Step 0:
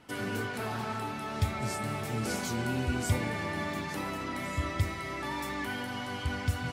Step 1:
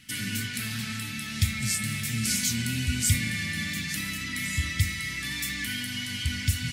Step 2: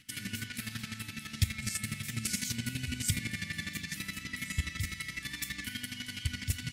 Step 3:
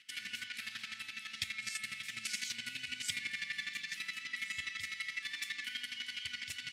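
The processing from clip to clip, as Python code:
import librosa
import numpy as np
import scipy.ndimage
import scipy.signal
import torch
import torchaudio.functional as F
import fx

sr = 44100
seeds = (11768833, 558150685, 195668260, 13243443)

y1 = fx.curve_eq(x, sr, hz=(230.0, 380.0, 920.0, 1900.0, 8600.0), db=(0, -20, -25, 4, 10))
y1 = y1 * 10.0 ** (4.0 / 20.0)
y2 = fx.chopper(y1, sr, hz=12.0, depth_pct=65, duty_pct=25)
y2 = y2 * 10.0 ** (-3.0 / 20.0)
y3 = fx.bandpass_q(y2, sr, hz=2700.0, q=0.91)
y3 = y3 * 10.0 ** (1.0 / 20.0)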